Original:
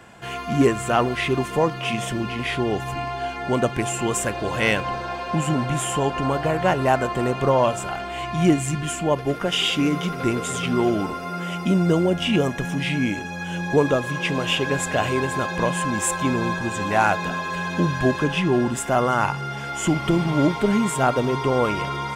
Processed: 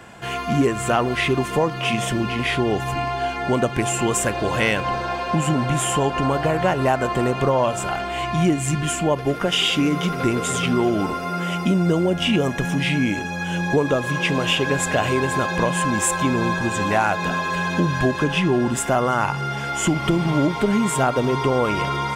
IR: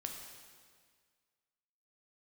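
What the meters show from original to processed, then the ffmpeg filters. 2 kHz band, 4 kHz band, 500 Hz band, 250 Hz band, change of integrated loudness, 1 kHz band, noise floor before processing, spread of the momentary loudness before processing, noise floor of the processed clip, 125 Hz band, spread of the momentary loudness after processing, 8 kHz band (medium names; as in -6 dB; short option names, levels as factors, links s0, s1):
+2.0 dB, +2.5 dB, +1.0 dB, +1.0 dB, +1.5 dB, +1.5 dB, -31 dBFS, 7 LU, -28 dBFS, +2.0 dB, 4 LU, +3.0 dB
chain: -af "acompressor=threshold=0.1:ratio=3,volume=1.58"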